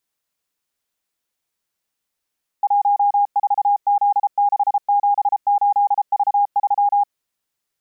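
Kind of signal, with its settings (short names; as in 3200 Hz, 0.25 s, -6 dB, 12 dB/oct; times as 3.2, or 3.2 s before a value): Morse "14Z678V3" 33 wpm 814 Hz -12.5 dBFS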